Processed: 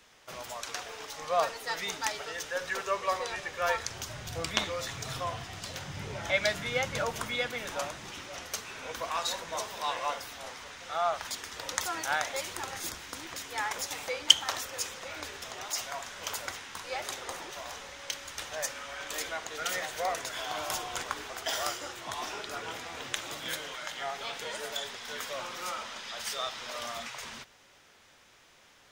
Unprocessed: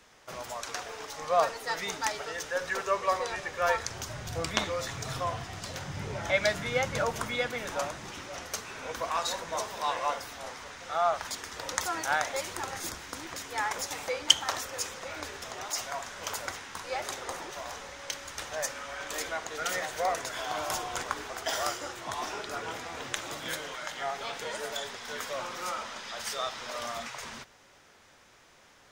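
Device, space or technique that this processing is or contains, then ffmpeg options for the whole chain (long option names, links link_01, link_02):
presence and air boost: -af "equalizer=frequency=3100:width_type=o:width=1.2:gain=4.5,highshelf=frequency=10000:gain=6,volume=-3dB"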